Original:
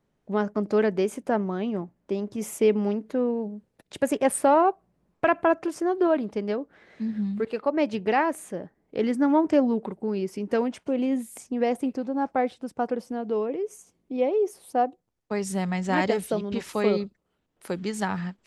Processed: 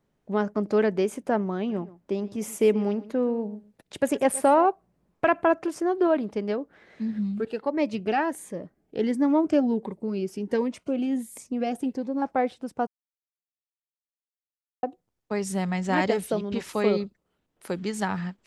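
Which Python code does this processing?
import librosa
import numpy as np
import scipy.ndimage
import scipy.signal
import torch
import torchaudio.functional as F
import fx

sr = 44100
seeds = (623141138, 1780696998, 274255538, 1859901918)

y = fx.echo_single(x, sr, ms=124, db=-18.0, at=(1.68, 4.65), fade=0.02)
y = fx.notch_cascade(y, sr, direction='rising', hz=1.4, at=(7.19, 12.22))
y = fx.edit(y, sr, fx.silence(start_s=12.87, length_s=1.96), tone=tone)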